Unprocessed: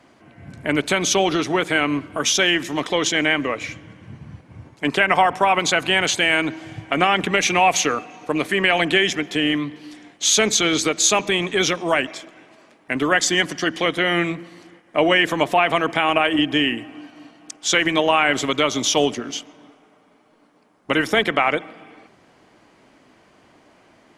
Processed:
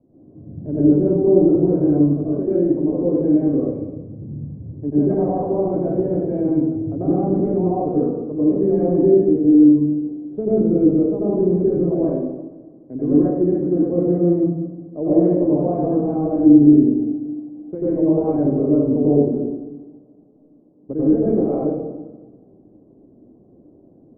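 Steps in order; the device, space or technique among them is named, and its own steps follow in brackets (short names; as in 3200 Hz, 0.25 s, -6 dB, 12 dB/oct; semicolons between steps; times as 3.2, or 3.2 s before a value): next room (LPF 450 Hz 24 dB/oct; reverb RT60 1.1 s, pre-delay 87 ms, DRR -9.5 dB); gain -2.5 dB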